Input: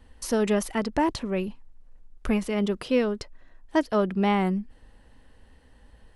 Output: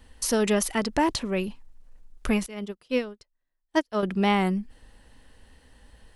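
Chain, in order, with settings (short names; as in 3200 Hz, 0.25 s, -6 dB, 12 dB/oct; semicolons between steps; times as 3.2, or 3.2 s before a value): high shelf 2400 Hz +8 dB; 2.46–4.03 upward expander 2.5:1, over -38 dBFS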